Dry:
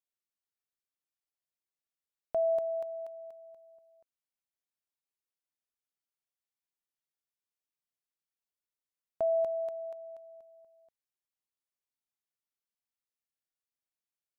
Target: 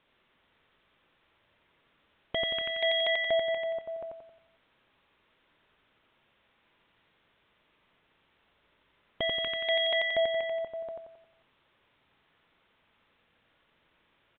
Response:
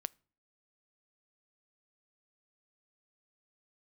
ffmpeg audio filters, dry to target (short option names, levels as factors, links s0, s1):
-filter_complex "[0:a]apsyclip=47.3,bandreject=f=740:w=12,acontrast=65,aemphasis=mode=reproduction:type=50kf,aeval=exprs='0.251*(abs(mod(val(0)/0.251+3,4)-2)-1)':c=same,asplit=2[s0][s1];[s1]aecho=0:1:89|178|267|356|445|534:0.668|0.301|0.135|0.0609|0.0274|0.0123[s2];[s0][s2]amix=inputs=2:normalize=0,aresample=8000,aresample=44100,volume=0.355"